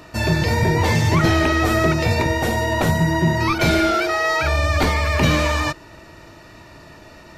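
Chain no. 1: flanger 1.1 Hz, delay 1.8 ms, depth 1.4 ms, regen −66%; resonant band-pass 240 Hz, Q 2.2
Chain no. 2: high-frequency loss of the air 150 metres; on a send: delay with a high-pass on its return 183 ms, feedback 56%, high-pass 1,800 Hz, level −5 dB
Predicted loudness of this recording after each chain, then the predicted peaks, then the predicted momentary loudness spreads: −32.5, −19.0 LKFS; −18.0, −6.5 dBFS; 9, 5 LU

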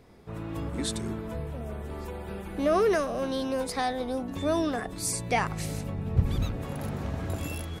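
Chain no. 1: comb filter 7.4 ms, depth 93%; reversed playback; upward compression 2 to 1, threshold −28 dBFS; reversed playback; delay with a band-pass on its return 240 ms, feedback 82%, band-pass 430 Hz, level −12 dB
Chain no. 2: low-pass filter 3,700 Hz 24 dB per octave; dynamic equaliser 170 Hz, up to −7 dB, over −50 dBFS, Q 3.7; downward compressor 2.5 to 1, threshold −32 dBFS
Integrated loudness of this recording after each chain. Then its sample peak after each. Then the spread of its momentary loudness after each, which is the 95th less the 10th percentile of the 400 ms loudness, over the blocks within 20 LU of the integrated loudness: −27.5, −36.0 LKFS; −9.0, −19.5 dBFS; 11, 6 LU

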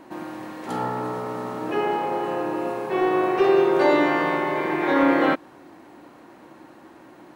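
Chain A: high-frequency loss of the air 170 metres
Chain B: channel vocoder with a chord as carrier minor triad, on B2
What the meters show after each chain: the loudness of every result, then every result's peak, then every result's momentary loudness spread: −23.0, −23.5 LKFS; −7.5, −6.5 dBFS; 12, 12 LU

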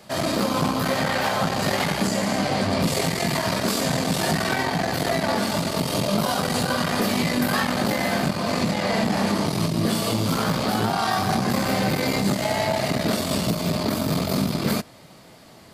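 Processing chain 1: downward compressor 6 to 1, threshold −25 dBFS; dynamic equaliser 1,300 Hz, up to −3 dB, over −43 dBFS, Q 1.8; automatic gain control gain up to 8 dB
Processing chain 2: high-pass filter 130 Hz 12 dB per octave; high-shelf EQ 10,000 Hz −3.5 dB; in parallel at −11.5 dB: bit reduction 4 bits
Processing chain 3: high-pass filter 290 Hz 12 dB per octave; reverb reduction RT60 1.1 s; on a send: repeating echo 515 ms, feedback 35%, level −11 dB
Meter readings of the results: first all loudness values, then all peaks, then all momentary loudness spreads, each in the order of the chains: −21.0, −21.5, −26.5 LKFS; −8.5, −8.5, −12.5 dBFS; 1, 2, 4 LU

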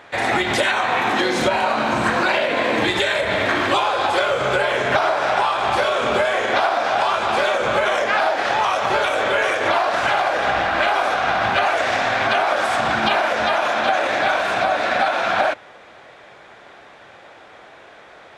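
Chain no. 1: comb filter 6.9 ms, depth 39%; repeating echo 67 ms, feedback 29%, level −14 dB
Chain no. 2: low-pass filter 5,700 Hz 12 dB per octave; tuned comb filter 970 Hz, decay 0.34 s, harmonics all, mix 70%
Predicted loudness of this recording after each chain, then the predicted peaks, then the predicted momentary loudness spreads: −18.0, −29.0 LKFS; −3.5, −14.5 dBFS; 1, 1 LU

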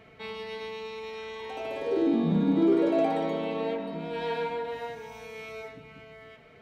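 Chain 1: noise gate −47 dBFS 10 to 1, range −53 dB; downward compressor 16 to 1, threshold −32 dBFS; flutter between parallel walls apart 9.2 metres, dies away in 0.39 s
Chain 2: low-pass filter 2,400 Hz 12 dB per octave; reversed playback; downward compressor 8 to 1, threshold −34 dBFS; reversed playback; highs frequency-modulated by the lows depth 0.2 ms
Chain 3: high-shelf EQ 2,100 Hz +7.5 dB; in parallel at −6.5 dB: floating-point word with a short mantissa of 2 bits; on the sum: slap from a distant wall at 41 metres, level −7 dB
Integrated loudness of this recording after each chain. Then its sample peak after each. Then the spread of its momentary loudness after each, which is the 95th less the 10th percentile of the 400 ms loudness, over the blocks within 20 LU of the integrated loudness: −37.0, −39.0, −25.0 LKFS; −23.5, −26.0, −8.0 dBFS; 9, 8, 18 LU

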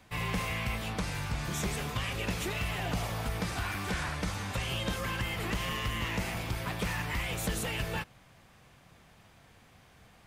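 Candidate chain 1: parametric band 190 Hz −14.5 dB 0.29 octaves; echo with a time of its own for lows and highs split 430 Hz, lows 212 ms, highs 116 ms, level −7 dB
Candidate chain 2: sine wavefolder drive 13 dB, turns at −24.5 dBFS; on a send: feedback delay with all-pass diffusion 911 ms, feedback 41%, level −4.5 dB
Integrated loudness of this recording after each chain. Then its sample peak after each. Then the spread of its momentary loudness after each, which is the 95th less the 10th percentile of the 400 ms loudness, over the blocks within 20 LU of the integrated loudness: −33.5, −25.0 LKFS; −21.0, −15.0 dBFS; 3, 8 LU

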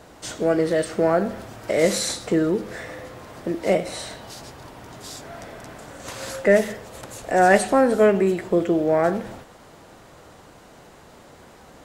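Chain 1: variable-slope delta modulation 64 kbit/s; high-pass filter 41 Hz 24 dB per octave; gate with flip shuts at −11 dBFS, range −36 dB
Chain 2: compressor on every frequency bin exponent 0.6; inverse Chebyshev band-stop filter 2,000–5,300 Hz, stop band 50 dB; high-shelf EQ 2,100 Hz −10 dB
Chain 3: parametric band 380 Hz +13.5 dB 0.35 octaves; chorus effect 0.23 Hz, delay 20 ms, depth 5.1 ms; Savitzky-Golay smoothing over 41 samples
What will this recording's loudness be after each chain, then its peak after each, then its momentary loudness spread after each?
−32.5, −21.0, −18.5 LKFS; −10.5, −3.5, −1.0 dBFS; 21, 17, 20 LU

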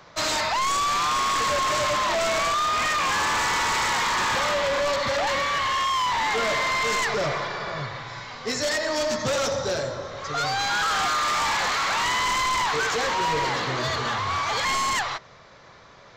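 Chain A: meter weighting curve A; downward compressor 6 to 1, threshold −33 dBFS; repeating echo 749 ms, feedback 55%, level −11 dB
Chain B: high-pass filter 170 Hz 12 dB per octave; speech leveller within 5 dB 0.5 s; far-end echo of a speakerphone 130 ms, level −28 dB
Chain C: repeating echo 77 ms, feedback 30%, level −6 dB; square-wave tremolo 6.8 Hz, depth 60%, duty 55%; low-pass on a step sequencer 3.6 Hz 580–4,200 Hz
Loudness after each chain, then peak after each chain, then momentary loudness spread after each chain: −33.5, −24.0, −20.5 LKFS; −23.0, −14.0, −5.5 dBFS; 3, 2, 9 LU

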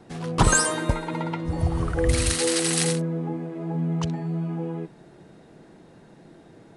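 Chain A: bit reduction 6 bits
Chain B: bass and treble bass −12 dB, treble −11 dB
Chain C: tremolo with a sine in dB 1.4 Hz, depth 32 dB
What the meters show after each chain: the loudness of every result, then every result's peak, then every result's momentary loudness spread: −24.5, −29.5, −30.5 LKFS; −4.5, −7.5, −9.0 dBFS; 11, 12, 21 LU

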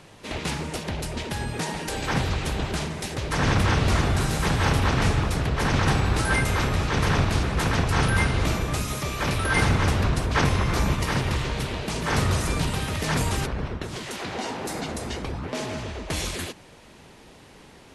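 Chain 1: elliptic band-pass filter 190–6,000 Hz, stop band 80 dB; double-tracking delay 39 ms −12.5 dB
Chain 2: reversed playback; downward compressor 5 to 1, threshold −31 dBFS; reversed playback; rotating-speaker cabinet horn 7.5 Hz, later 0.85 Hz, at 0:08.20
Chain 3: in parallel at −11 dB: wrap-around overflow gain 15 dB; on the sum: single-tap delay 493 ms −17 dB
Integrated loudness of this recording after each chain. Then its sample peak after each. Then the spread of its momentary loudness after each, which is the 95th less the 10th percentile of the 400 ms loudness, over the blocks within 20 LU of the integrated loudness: −28.0, −36.5, −23.5 LKFS; −9.0, −21.5, −8.5 dBFS; 9, 3, 9 LU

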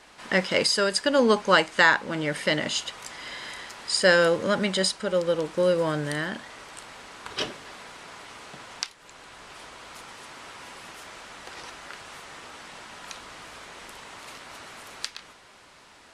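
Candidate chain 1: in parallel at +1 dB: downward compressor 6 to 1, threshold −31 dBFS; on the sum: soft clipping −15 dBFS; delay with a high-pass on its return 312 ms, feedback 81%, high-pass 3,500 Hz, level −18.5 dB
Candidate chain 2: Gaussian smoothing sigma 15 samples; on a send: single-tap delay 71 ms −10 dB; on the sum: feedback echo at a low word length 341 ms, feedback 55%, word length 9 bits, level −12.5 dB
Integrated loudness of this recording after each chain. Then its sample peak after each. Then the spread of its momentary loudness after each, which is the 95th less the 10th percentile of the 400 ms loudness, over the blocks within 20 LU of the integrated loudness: −27.0, −30.0 LKFS; −14.5, −13.0 dBFS; 15, 20 LU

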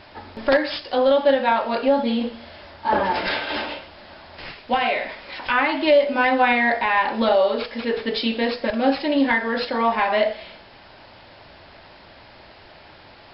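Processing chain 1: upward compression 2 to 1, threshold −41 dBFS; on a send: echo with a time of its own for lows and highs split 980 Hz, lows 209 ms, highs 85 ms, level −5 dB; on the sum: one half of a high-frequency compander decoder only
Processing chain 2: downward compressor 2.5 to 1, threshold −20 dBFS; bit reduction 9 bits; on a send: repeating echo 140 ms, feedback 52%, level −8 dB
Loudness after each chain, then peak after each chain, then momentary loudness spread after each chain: −19.5, −23.5 LKFS; −4.5, −9.5 dBFS; 13, 15 LU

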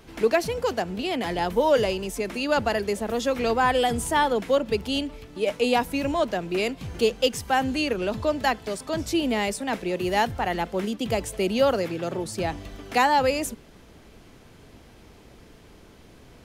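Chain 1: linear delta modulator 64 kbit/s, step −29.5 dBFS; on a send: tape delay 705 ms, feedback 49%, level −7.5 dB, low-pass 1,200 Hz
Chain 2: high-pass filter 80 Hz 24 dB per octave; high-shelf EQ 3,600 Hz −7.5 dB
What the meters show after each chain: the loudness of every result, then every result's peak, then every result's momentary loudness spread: −25.0, −25.5 LKFS; −9.0, −10.0 dBFS; 12, 8 LU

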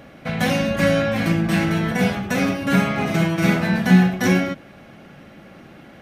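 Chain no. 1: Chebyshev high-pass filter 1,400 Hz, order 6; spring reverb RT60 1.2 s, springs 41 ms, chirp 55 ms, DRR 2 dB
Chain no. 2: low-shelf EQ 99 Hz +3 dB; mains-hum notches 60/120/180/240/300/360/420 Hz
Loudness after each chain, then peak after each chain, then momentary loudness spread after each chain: −25.5, −20.0 LKFS; −13.0, −4.5 dBFS; 5, 4 LU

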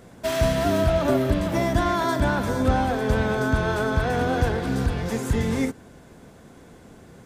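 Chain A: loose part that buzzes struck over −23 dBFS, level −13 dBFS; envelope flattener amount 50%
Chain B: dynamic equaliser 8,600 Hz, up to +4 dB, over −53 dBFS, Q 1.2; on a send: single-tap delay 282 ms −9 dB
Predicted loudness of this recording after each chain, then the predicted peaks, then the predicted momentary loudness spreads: −19.5, −23.0 LKFS; −4.5, −8.0 dBFS; 14, 5 LU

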